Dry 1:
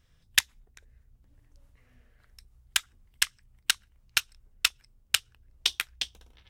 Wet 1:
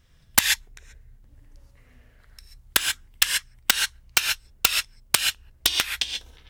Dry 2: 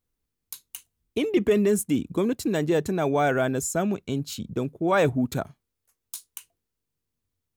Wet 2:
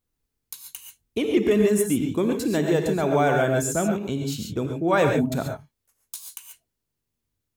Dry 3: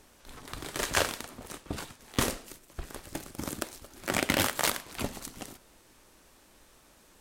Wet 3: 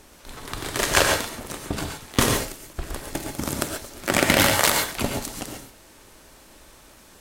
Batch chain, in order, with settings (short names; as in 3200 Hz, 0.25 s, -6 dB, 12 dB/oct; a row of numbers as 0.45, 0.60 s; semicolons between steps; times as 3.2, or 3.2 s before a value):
non-linear reverb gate 0.16 s rising, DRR 3 dB; wrapped overs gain 7 dB; match loudness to -23 LUFS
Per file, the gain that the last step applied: +5.5, +0.5, +7.5 dB